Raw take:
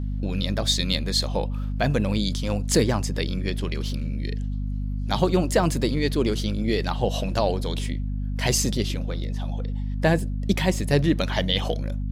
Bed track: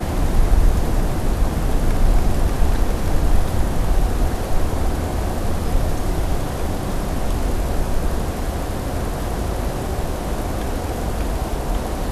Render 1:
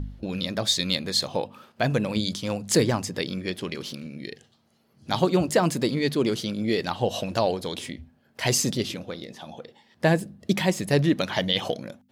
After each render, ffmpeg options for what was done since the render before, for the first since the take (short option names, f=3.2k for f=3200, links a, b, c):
-af "bandreject=f=50:t=h:w=4,bandreject=f=100:t=h:w=4,bandreject=f=150:t=h:w=4,bandreject=f=200:t=h:w=4,bandreject=f=250:t=h:w=4"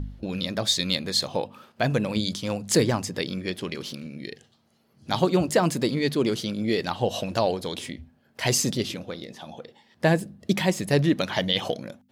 -af anull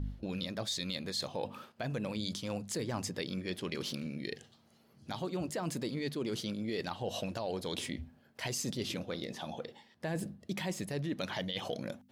-af "alimiter=limit=-16dB:level=0:latency=1:release=110,areverse,acompressor=threshold=-35dB:ratio=4,areverse"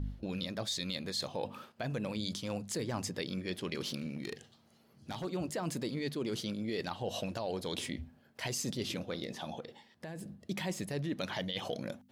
-filter_complex "[0:a]asettb=1/sr,asplit=3[a][b][c];[a]atrim=end=4.094[d];[b]atrim=start=4.09:end=5.25,asetpts=PTS-STARTPTS,afade=t=in:d=0.004:c=qsin,afade=t=out:st=1.156:d=0.004:c=qsin,volume=33.5dB,asoftclip=hard,volume=-33.5dB[e];[c]atrim=start=5.246[f];[d][e]acrossfade=d=0.004:c1=hsin:c2=qsin[g];[g][f]acrossfade=d=0.004:c1=qsin:c2=hsin,asettb=1/sr,asplit=3[h][i][j];[h]atrim=end=9.604[k];[i]atrim=start=9.6:end=10.45,asetpts=PTS-STARTPTS,afade=t=in:d=0.004:c=qsin,afade=t=out:st=0.846:d=0.004:c=qsin,acompressor=threshold=-41dB:ratio=4:attack=3.2:release=140:knee=1:detection=peak[l];[j]atrim=start=10.446[m];[k][l]acrossfade=d=0.004:c1=hsin:c2=qsin[n];[n][m]acrossfade=d=0.004:c1=qsin:c2=hsin"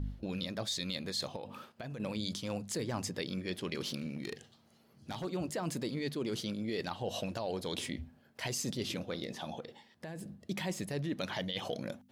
-filter_complex "[0:a]asettb=1/sr,asplit=3[a][b][c];[a]atrim=end=1.364[d];[b]atrim=start=1.36:end=2,asetpts=PTS-STARTPTS,afade=t=in:d=0.004:c=qsin,afade=t=out:st=0.636:d=0.004:c=qsin,acompressor=threshold=-39dB:ratio=6:attack=3.2:release=140:knee=1:detection=peak[e];[c]atrim=start=1.996[f];[d][e]acrossfade=d=0.004:c1=hsin:c2=qsin[g];[g][f]acrossfade=d=0.004:c1=qsin:c2=hsin"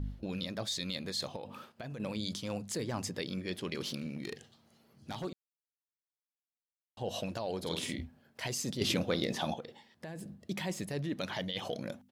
-filter_complex "[0:a]asplit=3[a][b][c];[a]afade=t=out:st=7.62:d=0.02[d];[b]asplit=2[e][f];[f]adelay=48,volume=-3.5dB[g];[e][g]amix=inputs=2:normalize=0,afade=t=in:st=7.62:d=0.02,afade=t=out:st=8.05:d=0.02[h];[c]afade=t=in:st=8.05:d=0.02[i];[d][h][i]amix=inputs=3:normalize=0,asettb=1/sr,asplit=3[j][k][l];[j]atrim=end=8.814[m];[k]atrim=start=8.81:end=9.54,asetpts=PTS-STARTPTS,afade=t=in:d=0.004:c=qsin,afade=t=out:st=0.726:d=0.004:c=qsin,acontrast=89[n];[l]atrim=start=9.536[o];[m][n]acrossfade=d=0.004:c1=hsin:c2=qsin[p];[p][o]acrossfade=d=0.004:c1=qsin:c2=hsin,asplit=3[q][r][s];[q]atrim=end=5.33,asetpts=PTS-STARTPTS,afade=t=out:st=5.326:d=0.004:c=hsin[t];[r]atrim=start=5.33:end=6.97,asetpts=PTS-STARTPTS,volume=0[u];[s]atrim=start=6.97,asetpts=PTS-STARTPTS,afade=t=in:d=0.004:c=hsin[v];[t][u][v]concat=n=3:v=0:a=1"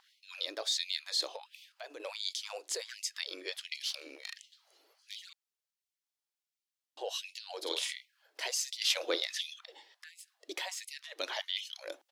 -filter_complex "[0:a]acrossover=split=270|1600|5900[a][b][c][d];[c]crystalizer=i=2.5:c=0[e];[a][b][e][d]amix=inputs=4:normalize=0,afftfilt=real='re*gte(b*sr/1024,270*pow(2000/270,0.5+0.5*sin(2*PI*1.4*pts/sr)))':imag='im*gte(b*sr/1024,270*pow(2000/270,0.5+0.5*sin(2*PI*1.4*pts/sr)))':win_size=1024:overlap=0.75"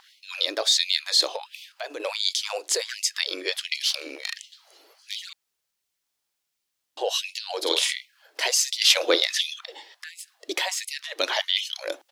-af "volume=12dB"